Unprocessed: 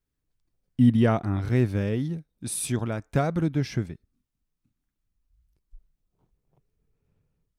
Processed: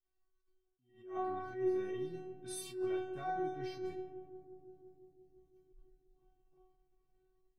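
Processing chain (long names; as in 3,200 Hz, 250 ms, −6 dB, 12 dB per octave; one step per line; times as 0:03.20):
bass and treble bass −1 dB, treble −11 dB
reversed playback
downward compressor 6 to 1, threshold −32 dBFS, peak gain reduction 16.5 dB
reversed playback
stiff-string resonator 370 Hz, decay 0.73 s, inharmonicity 0.002
feedback echo with a low-pass in the loop 172 ms, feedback 81%, low-pass 1,200 Hz, level −12.5 dB
reverb whose tail is shaped and stops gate 90 ms falling, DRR 3.5 dB
level that may rise only so fast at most 120 dB per second
level +17 dB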